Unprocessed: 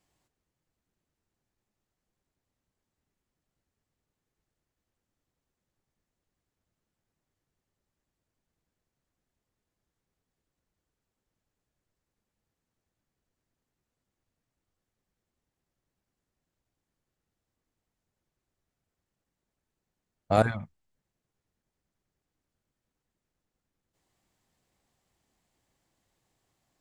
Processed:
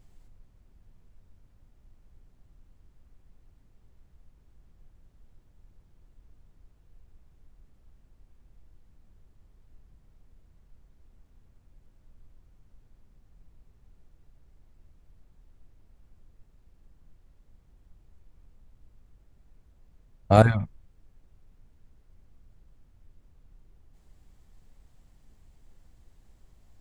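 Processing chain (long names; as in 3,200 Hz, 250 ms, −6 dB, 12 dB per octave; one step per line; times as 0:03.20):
background noise brown −67 dBFS
low-shelf EQ 130 Hz +10.5 dB
level +4 dB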